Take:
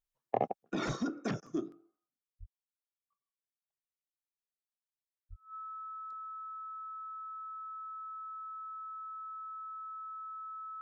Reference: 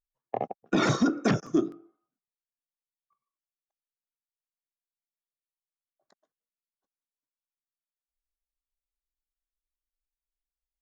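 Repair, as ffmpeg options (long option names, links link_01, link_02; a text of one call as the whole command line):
ffmpeg -i in.wav -filter_complex "[0:a]bandreject=frequency=1300:width=30,asplit=3[link_01][link_02][link_03];[link_01]afade=type=out:start_time=0.86:duration=0.02[link_04];[link_02]highpass=frequency=140:width=0.5412,highpass=frequency=140:width=1.3066,afade=type=in:start_time=0.86:duration=0.02,afade=type=out:start_time=0.98:duration=0.02[link_05];[link_03]afade=type=in:start_time=0.98:duration=0.02[link_06];[link_04][link_05][link_06]amix=inputs=3:normalize=0,asplit=3[link_07][link_08][link_09];[link_07]afade=type=out:start_time=2.39:duration=0.02[link_10];[link_08]highpass=frequency=140:width=0.5412,highpass=frequency=140:width=1.3066,afade=type=in:start_time=2.39:duration=0.02,afade=type=out:start_time=2.51:duration=0.02[link_11];[link_09]afade=type=in:start_time=2.51:duration=0.02[link_12];[link_10][link_11][link_12]amix=inputs=3:normalize=0,asplit=3[link_13][link_14][link_15];[link_13]afade=type=out:start_time=5.29:duration=0.02[link_16];[link_14]highpass=frequency=140:width=0.5412,highpass=frequency=140:width=1.3066,afade=type=in:start_time=5.29:duration=0.02,afade=type=out:start_time=5.41:duration=0.02[link_17];[link_15]afade=type=in:start_time=5.41:duration=0.02[link_18];[link_16][link_17][link_18]amix=inputs=3:normalize=0,asetnsamples=nb_out_samples=441:pad=0,asendcmd='0.63 volume volume 11dB',volume=0dB" out.wav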